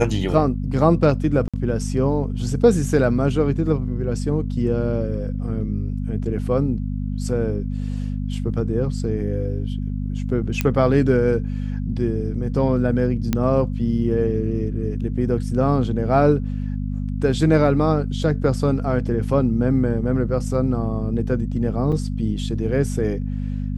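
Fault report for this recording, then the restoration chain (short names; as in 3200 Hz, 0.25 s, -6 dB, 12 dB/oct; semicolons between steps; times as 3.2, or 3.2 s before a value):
hum 50 Hz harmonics 5 -25 dBFS
1.48–1.54 gap 56 ms
10.61 pop -7 dBFS
13.33 pop -7 dBFS
21.92–21.93 gap 6.2 ms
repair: de-click; de-hum 50 Hz, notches 5; interpolate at 1.48, 56 ms; interpolate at 21.92, 6.2 ms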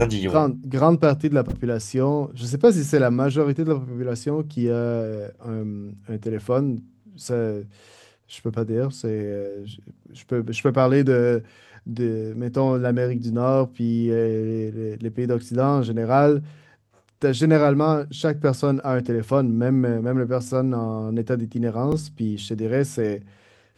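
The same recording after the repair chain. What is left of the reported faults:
none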